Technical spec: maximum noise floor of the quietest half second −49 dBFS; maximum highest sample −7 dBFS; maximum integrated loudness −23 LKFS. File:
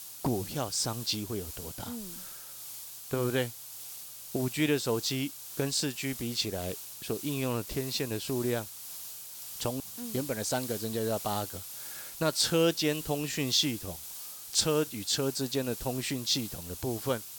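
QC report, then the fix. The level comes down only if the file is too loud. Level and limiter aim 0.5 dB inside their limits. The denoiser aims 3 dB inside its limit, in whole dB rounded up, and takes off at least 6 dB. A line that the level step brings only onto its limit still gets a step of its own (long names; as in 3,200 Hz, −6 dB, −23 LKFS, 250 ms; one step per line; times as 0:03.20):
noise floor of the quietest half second −44 dBFS: out of spec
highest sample −12.5 dBFS: in spec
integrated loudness −32.0 LKFS: in spec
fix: broadband denoise 8 dB, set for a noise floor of −44 dBFS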